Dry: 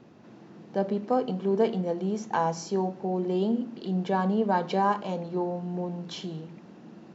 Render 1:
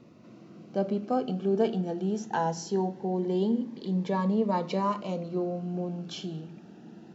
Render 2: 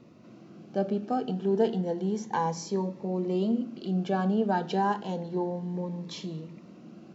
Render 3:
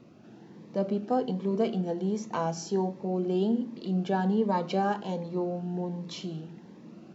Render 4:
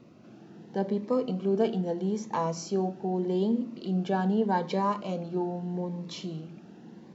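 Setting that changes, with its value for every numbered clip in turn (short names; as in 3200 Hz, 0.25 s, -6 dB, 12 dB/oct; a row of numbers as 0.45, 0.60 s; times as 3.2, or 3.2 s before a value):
cascading phaser, rate: 0.21, 0.31, 1.3, 0.81 Hz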